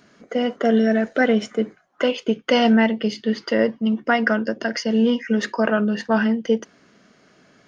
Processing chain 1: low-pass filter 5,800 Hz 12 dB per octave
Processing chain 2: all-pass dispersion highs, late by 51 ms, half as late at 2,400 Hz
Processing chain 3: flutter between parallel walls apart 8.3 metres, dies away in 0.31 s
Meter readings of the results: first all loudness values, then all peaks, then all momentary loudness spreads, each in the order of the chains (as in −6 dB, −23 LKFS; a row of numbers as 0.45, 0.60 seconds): −21.0, −21.0, −20.5 LKFS; −5.5, −5.0, −5.5 dBFS; 7, 7, 7 LU